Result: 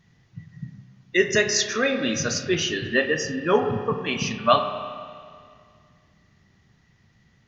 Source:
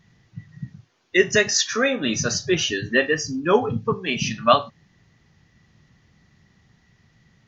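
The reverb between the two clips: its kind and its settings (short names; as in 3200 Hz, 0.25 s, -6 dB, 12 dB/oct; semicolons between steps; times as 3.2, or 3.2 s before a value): spring tank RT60 2.1 s, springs 31/50 ms, chirp 35 ms, DRR 7 dB; gain -2.5 dB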